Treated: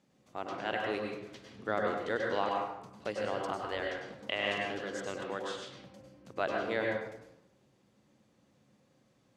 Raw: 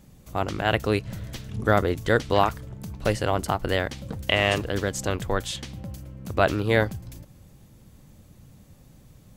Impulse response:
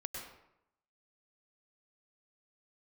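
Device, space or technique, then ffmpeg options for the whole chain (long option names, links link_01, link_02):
supermarket ceiling speaker: -filter_complex "[0:a]highpass=250,lowpass=5900[link_01];[1:a]atrim=start_sample=2205[link_02];[link_01][link_02]afir=irnorm=-1:irlink=0,asplit=3[link_03][link_04][link_05];[link_03]afade=type=out:start_time=3.61:duration=0.02[link_06];[link_04]asubboost=boost=10:cutoff=57,afade=type=in:start_time=3.61:duration=0.02,afade=type=out:start_time=4.01:duration=0.02[link_07];[link_05]afade=type=in:start_time=4.01:duration=0.02[link_08];[link_06][link_07][link_08]amix=inputs=3:normalize=0,volume=-8.5dB"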